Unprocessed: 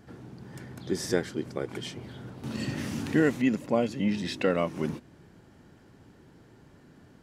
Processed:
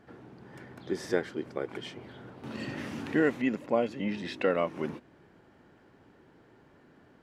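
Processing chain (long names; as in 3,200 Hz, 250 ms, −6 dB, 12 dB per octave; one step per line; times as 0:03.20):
bass and treble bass −9 dB, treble −12 dB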